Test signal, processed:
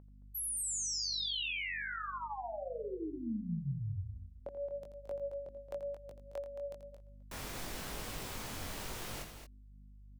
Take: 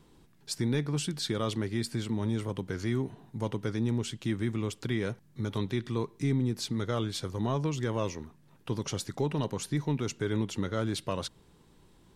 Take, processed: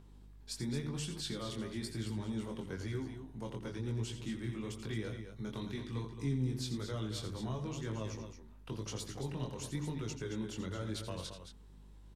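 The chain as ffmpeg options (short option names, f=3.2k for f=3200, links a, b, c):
-filter_complex "[0:a]bandreject=f=50:t=h:w=6,bandreject=f=100:t=h:w=6,bandreject=f=150:t=h:w=6,bandreject=f=200:t=h:w=6,bandreject=f=250:t=h:w=6,bandreject=f=300:t=h:w=6,bandreject=f=350:t=h:w=6,acrossover=split=220|3000[a][b][c];[b]acompressor=threshold=-34dB:ratio=6[d];[a][d][c]amix=inputs=3:normalize=0,aeval=exprs='val(0)+0.00251*(sin(2*PI*50*n/s)+sin(2*PI*2*50*n/s)/2+sin(2*PI*3*50*n/s)/3+sin(2*PI*4*50*n/s)/4+sin(2*PI*5*50*n/s)/5)':c=same,flanger=delay=18.5:depth=5.3:speed=1,acrossover=split=2000[e][f];[e]acompressor=mode=upward:threshold=-51dB:ratio=2.5[g];[g][f]amix=inputs=2:normalize=0,aecho=1:1:84.55|221.6:0.316|0.355,volume=-4dB"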